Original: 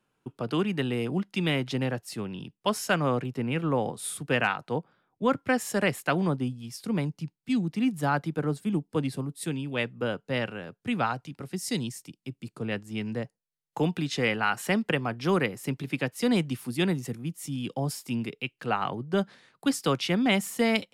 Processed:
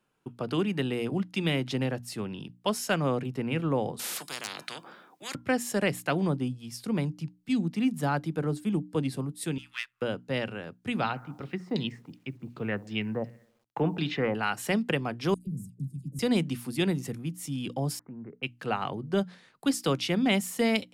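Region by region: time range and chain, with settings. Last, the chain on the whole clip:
0:03.99–0:05.35: high-pass filter 200 Hz 24 dB per octave + tuned comb filter 340 Hz, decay 0.24 s, harmonics odd, mix 40% + every bin compressed towards the loudest bin 10 to 1
0:09.58–0:10.02: gain on one half-wave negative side −7 dB + inverse Chebyshev high-pass filter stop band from 660 Hz
0:11.02–0:14.35: bucket-brigade delay 65 ms, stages 1,024, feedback 57%, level −22 dB + auto-filter low-pass saw down 2.7 Hz 750–4,900 Hz + bit-depth reduction 12 bits, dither none
0:15.34–0:16.19: elliptic band-stop filter 180–8,000 Hz, stop band 80 dB + high-shelf EQ 6,700 Hz −11 dB + all-pass dispersion lows, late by 129 ms, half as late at 1,000 Hz
0:17.99–0:18.43: Butterworth low-pass 1,700 Hz 48 dB per octave + downward compressor 3 to 1, threshold −41 dBFS
whole clip: mains-hum notches 60/120/180/240/300 Hz; dynamic equaliser 1,300 Hz, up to −4 dB, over −36 dBFS, Q 0.77

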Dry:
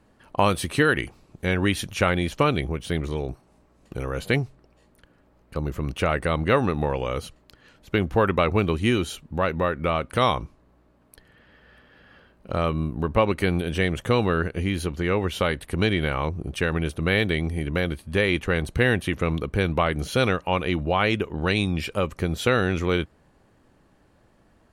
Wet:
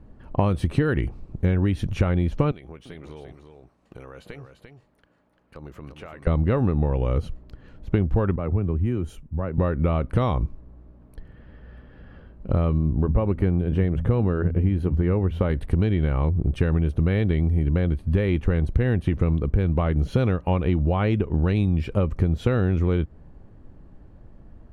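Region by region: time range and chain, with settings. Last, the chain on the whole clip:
0:02.51–0:06.27: high-pass filter 1,300 Hz 6 dB per octave + downward compressor 2.5 to 1, threshold −43 dBFS + single-tap delay 345 ms −7.5 dB
0:08.36–0:09.58: downward compressor 2 to 1, threshold −36 dBFS + parametric band 4,000 Hz −12 dB 0.91 octaves + multiband upward and downward expander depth 100%
0:12.78–0:15.50: parametric band 6,200 Hz −11 dB 2 octaves + hum removal 82.79 Hz, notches 3
whole clip: spectral tilt −4 dB per octave; downward compressor, threshold −17 dBFS

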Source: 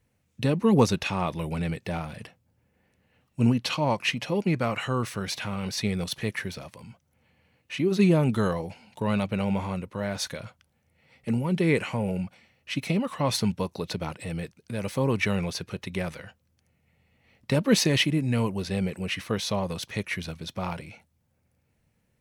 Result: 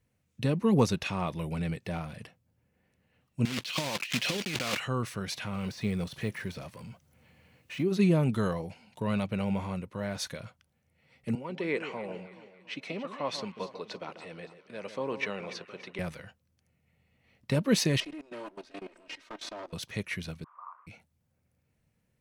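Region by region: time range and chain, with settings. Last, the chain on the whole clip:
0:03.45–0:04.80: one scale factor per block 3 bits + meter weighting curve D + compressor whose output falls as the input rises −29 dBFS
0:05.54–0:07.83: mu-law and A-law mismatch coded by mu + de-essing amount 100%
0:11.35–0:15.99: high-pass filter 380 Hz + high-frequency loss of the air 110 metres + delay that swaps between a low-pass and a high-pass 142 ms, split 1,400 Hz, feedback 66%, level −10.5 dB
0:18.00–0:19.73: lower of the sound and its delayed copy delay 3.2 ms + three-way crossover with the lows and the highs turned down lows −17 dB, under 270 Hz, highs −21 dB, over 7,500 Hz + output level in coarse steps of 18 dB
0:20.44–0:20.87: linear delta modulator 16 kbit/s, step −32 dBFS + flat-topped band-pass 1,100 Hz, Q 4.7
whole clip: parametric band 150 Hz +2 dB; notch filter 850 Hz, Q 20; level −4.5 dB

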